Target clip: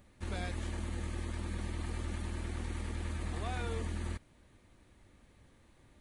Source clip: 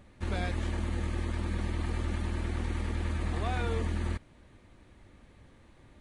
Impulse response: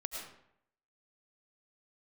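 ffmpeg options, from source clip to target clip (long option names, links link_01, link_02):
-af "highshelf=frequency=6600:gain=10.5,volume=-6dB"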